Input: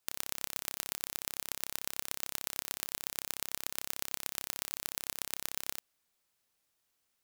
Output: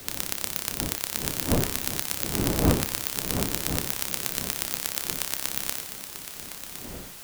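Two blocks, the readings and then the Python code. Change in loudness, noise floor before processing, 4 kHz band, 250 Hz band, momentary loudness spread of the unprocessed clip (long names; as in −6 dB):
+9.5 dB, −80 dBFS, +9.5 dB, +24.5 dB, 1 LU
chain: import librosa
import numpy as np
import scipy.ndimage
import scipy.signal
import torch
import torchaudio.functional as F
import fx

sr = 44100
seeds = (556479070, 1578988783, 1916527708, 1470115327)

p1 = fx.dmg_wind(x, sr, seeds[0], corner_hz=340.0, level_db=-43.0)
p2 = fx.quant_dither(p1, sr, seeds[1], bits=6, dither='triangular')
p3 = p1 + (p2 * 10.0 ** (-7.0 / 20.0))
p4 = p3 + 10.0 ** (-8.0 / 20.0) * np.pad(p3, (int(1061 * sr / 1000.0), 0))[:len(p3)]
p5 = fx.band_widen(p4, sr, depth_pct=40)
y = p5 * 10.0 ** (4.5 / 20.0)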